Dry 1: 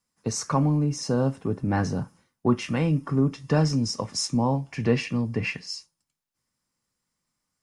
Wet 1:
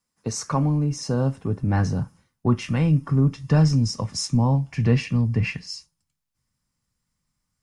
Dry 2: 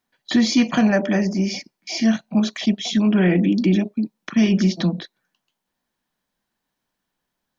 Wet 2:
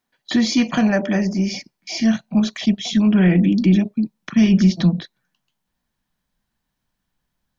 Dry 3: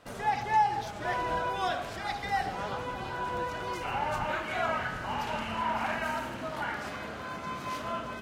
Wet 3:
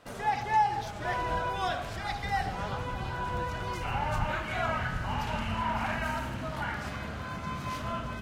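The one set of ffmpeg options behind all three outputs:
ffmpeg -i in.wav -af "asubboost=boost=4:cutoff=170" out.wav

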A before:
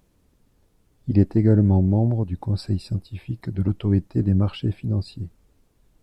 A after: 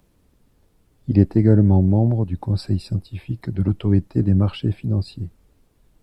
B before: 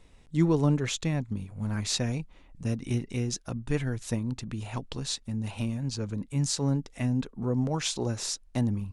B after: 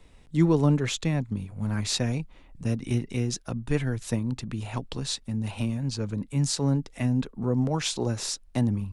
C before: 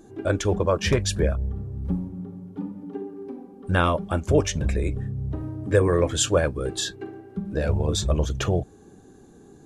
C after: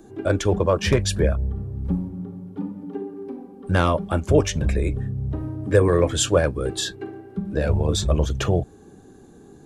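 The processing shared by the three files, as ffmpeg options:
ffmpeg -i in.wav -filter_complex "[0:a]equalizer=frequency=6400:width_type=o:width=0.52:gain=-2.5,acrossover=split=120|930|4400[link_01][link_02][link_03][link_04];[link_03]asoftclip=type=tanh:threshold=-23dB[link_05];[link_01][link_02][link_05][link_04]amix=inputs=4:normalize=0,volume=2.5dB" out.wav

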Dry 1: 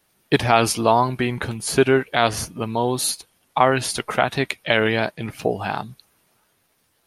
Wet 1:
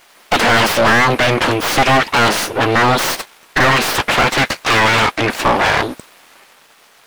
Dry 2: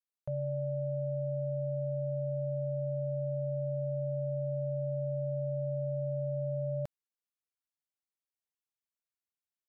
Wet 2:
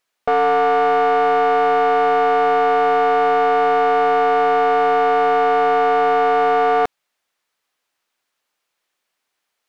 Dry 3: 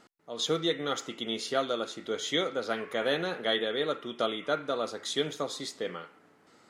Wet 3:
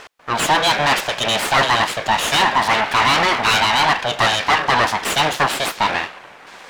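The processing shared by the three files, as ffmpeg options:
ffmpeg -i in.wav -filter_complex "[0:a]aeval=exprs='abs(val(0))':channel_layout=same,asplit=2[link_01][link_02];[link_02]highpass=frequency=720:poles=1,volume=37dB,asoftclip=type=tanh:threshold=-1dB[link_03];[link_01][link_03]amix=inputs=2:normalize=0,lowpass=frequency=2300:poles=1,volume=-6dB,volume=-2dB" out.wav

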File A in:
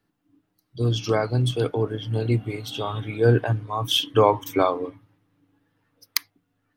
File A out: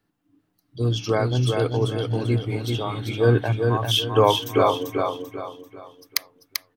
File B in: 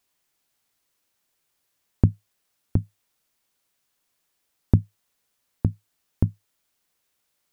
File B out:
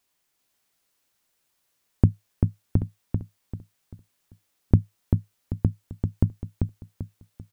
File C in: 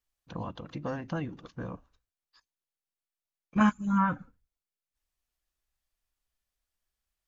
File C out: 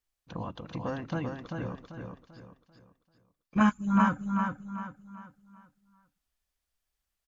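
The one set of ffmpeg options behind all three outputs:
ffmpeg -i in.wav -af "aecho=1:1:391|782|1173|1564|1955:0.596|0.214|0.0772|0.0278|0.01" out.wav

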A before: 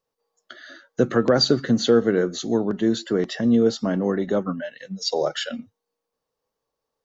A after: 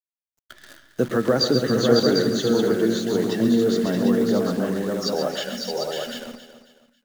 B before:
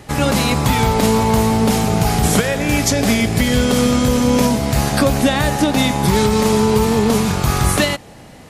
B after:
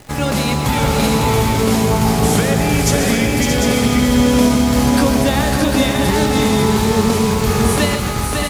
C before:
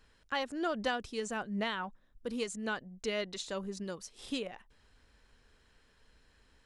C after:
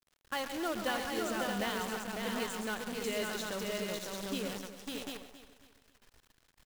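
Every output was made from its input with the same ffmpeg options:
ffmpeg -i in.wav -filter_complex "[0:a]asplit=2[link_01][link_02];[link_02]aecho=0:1:115|137|552|624|747:0.2|0.335|0.596|0.473|0.531[link_03];[link_01][link_03]amix=inputs=2:normalize=0,acrusher=bits=7:dc=4:mix=0:aa=0.000001,asplit=2[link_04][link_05];[link_05]aecho=0:1:272|544|816:0.224|0.0784|0.0274[link_06];[link_04][link_06]amix=inputs=2:normalize=0,volume=-2.5dB" out.wav

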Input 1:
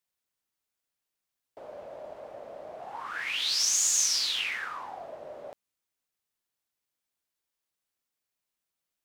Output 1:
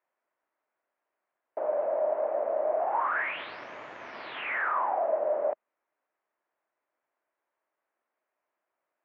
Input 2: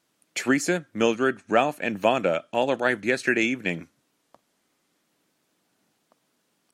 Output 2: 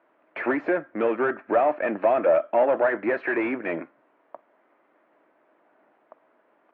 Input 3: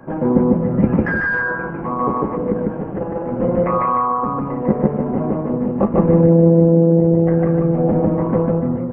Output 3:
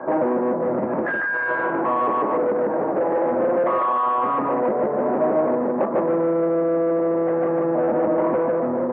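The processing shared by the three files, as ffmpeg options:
ffmpeg -i in.wav -filter_complex "[0:a]acompressor=threshold=-19dB:ratio=4,asplit=2[link_01][link_02];[link_02]highpass=frequency=720:poles=1,volume=24dB,asoftclip=type=tanh:threshold=-10dB[link_03];[link_01][link_03]amix=inputs=2:normalize=0,lowpass=frequency=1500:poles=1,volume=-6dB,highpass=170,equalizer=frequency=180:width_type=q:width=4:gain=-7,equalizer=frequency=340:width_type=q:width=4:gain=4,equalizer=frequency=620:width_type=q:width=4:gain=8,equalizer=frequency=970:width_type=q:width=4:gain=3,lowpass=frequency=2100:width=0.5412,lowpass=frequency=2100:width=1.3066,volume=-5dB" out.wav

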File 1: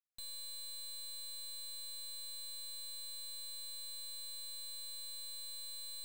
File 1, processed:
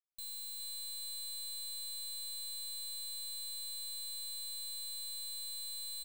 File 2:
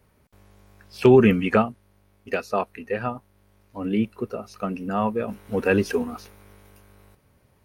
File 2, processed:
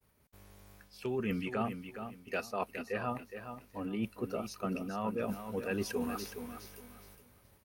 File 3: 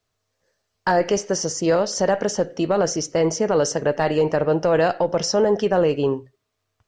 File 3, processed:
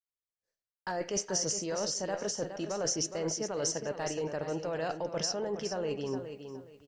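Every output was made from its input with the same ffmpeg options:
ffmpeg -i in.wav -filter_complex "[0:a]highshelf=frequency=7200:gain=-11.5,areverse,acompressor=threshold=-28dB:ratio=12,areverse,aemphasis=mode=production:type=75fm,acontrast=27,asplit=2[link_01][link_02];[link_02]aecho=0:1:416|832|1248:0.355|0.0923|0.024[link_03];[link_01][link_03]amix=inputs=2:normalize=0,agate=range=-33dB:threshold=-50dB:ratio=3:detection=peak,volume=-8dB" out.wav

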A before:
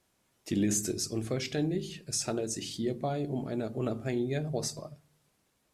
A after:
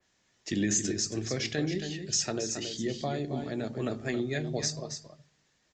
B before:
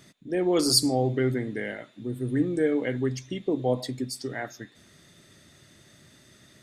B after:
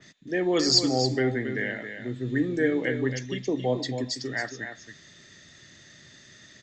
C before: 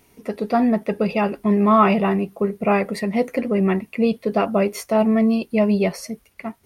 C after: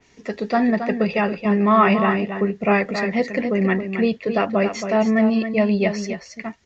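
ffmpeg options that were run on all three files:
ffmpeg -i in.wav -filter_complex "[0:a]equalizer=frequency=1800:width=5.3:gain=10,acrossover=split=180|2800[link_01][link_02][link_03];[link_03]acontrast=82[link_04];[link_01][link_02][link_04]amix=inputs=3:normalize=0,aresample=16000,aresample=44100,aecho=1:1:273:0.376,adynamicequalizer=threshold=0.01:dfrequency=3200:dqfactor=0.7:tfrequency=3200:tqfactor=0.7:attack=5:release=100:ratio=0.375:range=3:mode=cutabove:tftype=highshelf,volume=-1dB" out.wav

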